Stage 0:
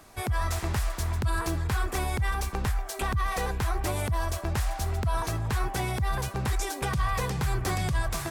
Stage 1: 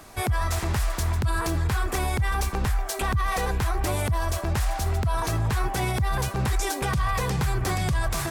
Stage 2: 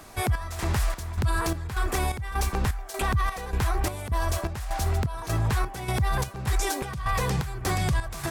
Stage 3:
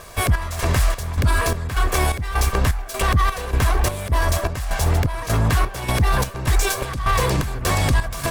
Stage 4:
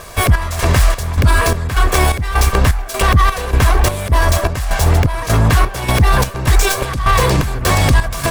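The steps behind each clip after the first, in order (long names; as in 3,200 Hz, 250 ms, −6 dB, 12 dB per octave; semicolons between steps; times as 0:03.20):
brickwall limiter −23 dBFS, peak gain reduction 4.5 dB; level +6 dB
square-wave tremolo 1.7 Hz, depth 65%, duty 60%
lower of the sound and its delayed copy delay 1.8 ms; level +8 dB
stylus tracing distortion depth 0.036 ms; level +6.5 dB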